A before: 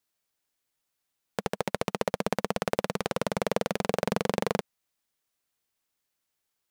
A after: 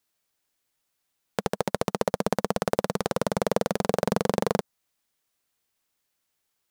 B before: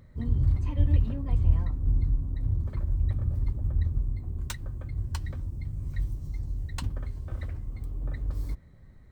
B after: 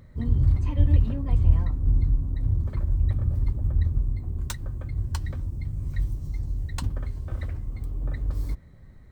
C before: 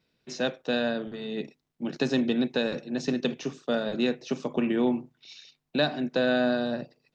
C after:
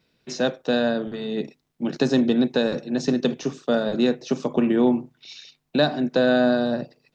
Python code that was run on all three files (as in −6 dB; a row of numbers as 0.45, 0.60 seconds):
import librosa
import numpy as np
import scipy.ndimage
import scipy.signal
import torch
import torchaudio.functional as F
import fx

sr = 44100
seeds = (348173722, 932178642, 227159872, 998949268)

y = fx.dynamic_eq(x, sr, hz=2500.0, q=1.3, threshold_db=-48.0, ratio=4.0, max_db=-7)
y = librosa.util.normalize(y) * 10.0 ** (-6 / 20.0)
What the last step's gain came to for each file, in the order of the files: +3.5, +3.5, +6.0 decibels